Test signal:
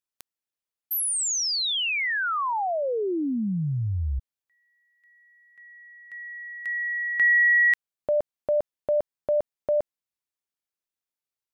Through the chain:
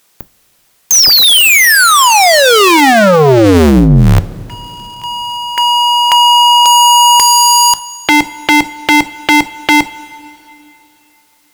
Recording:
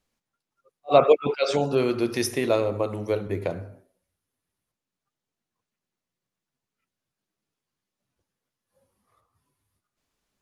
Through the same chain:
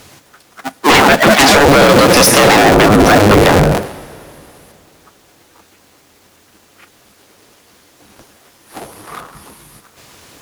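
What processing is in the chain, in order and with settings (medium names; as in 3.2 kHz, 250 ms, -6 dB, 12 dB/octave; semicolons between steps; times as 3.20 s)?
cycle switcher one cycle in 2, inverted; high-pass 130 Hz 6 dB/octave; compression 6:1, threshold -28 dBFS; sine folder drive 16 dB, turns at -15 dBFS; two-slope reverb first 0.21 s, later 3.1 s, from -22 dB, DRR 14.5 dB; loudness maximiser +19.5 dB; trim -1 dB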